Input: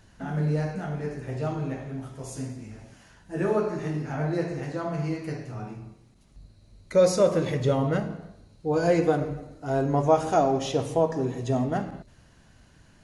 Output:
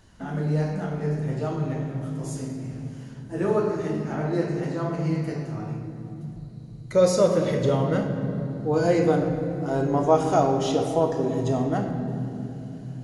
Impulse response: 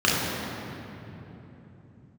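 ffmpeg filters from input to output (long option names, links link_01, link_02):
-filter_complex "[0:a]asplit=2[link_01][link_02];[1:a]atrim=start_sample=2205,highshelf=frequency=4600:gain=8[link_03];[link_02][link_03]afir=irnorm=-1:irlink=0,volume=-25dB[link_04];[link_01][link_04]amix=inputs=2:normalize=0"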